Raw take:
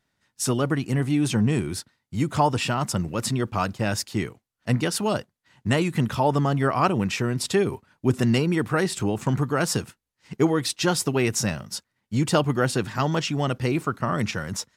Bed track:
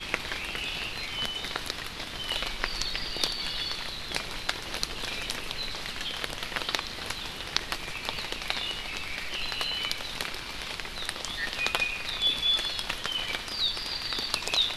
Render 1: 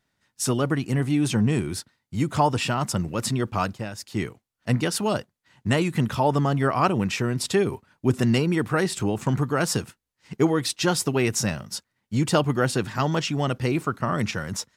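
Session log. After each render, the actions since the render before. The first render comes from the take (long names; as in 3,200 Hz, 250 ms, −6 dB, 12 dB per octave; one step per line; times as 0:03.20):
0:03.65–0:04.22: duck −11 dB, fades 0.25 s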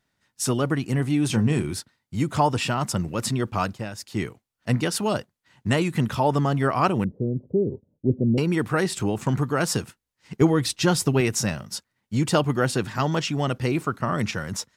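0:01.27–0:01.74: double-tracking delay 27 ms −10.5 dB
0:07.04–0:08.38: elliptic low-pass filter 550 Hz, stop band 80 dB
0:10.41–0:11.21: low-shelf EQ 140 Hz +11 dB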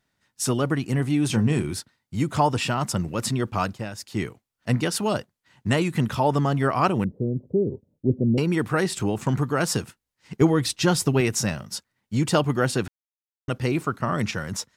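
0:12.88–0:13.48: silence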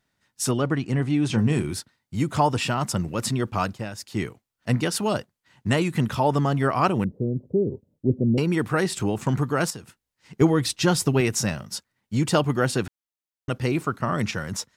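0:00.51–0:01.38: high-frequency loss of the air 64 metres
0:09.70–0:10.37: downward compressor 2 to 1, threshold −44 dBFS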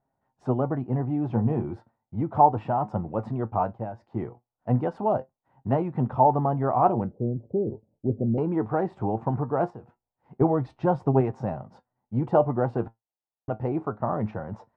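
flanger 0.18 Hz, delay 7.4 ms, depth 2.1 ms, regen +65%
low-pass with resonance 790 Hz, resonance Q 3.4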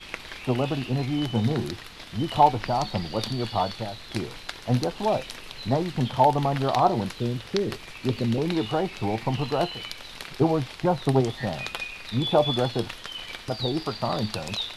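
mix in bed track −5.5 dB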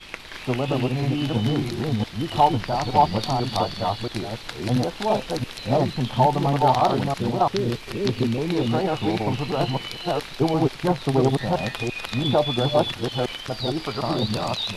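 delay that plays each chunk backwards 340 ms, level 0 dB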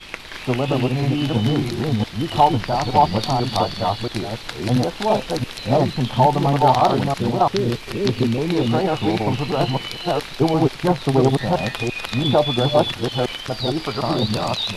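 level +3.5 dB
brickwall limiter −3 dBFS, peak gain reduction 2 dB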